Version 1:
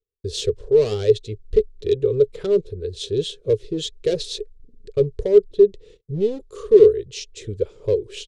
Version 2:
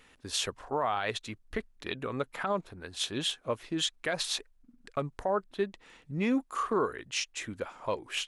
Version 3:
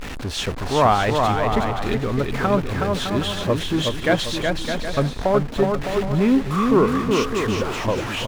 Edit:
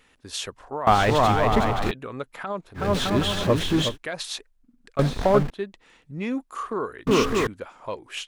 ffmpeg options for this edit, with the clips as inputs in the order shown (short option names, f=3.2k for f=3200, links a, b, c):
-filter_complex "[2:a]asplit=4[a][b][c][d];[1:a]asplit=5[e][f][g][h][i];[e]atrim=end=0.872[j];[a]atrim=start=0.868:end=1.912[k];[f]atrim=start=1.908:end=2.9[l];[b]atrim=start=2.74:end=3.98[m];[g]atrim=start=3.82:end=4.992[n];[c]atrim=start=4.988:end=5.502[o];[h]atrim=start=5.498:end=7.072[p];[d]atrim=start=7.068:end=7.472[q];[i]atrim=start=7.468[r];[j][k]acrossfade=d=0.004:c1=hsin:c2=hsin[s];[s][l]acrossfade=d=0.004:c1=hsin:c2=hsin[t];[t][m]acrossfade=d=0.16:c1=tri:c2=tri[u];[u][n]acrossfade=d=0.16:c1=tri:c2=tri[v];[v][o]acrossfade=d=0.004:c1=hsin:c2=hsin[w];[w][p]acrossfade=d=0.004:c1=hsin:c2=hsin[x];[x][q]acrossfade=d=0.004:c1=hsin:c2=hsin[y];[y][r]acrossfade=d=0.004:c1=hsin:c2=hsin"